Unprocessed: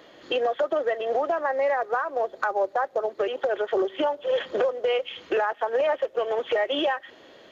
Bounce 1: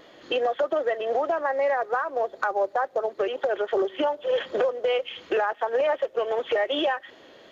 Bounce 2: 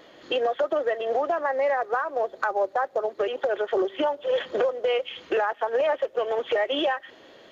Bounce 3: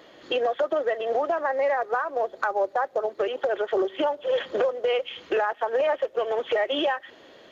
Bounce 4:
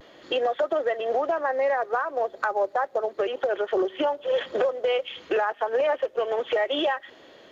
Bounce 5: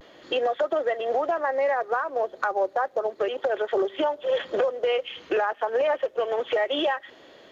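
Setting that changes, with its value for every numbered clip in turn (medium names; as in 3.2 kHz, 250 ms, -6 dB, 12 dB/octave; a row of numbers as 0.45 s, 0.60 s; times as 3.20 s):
vibrato, rate: 2.7 Hz, 6.2 Hz, 16 Hz, 0.47 Hz, 0.32 Hz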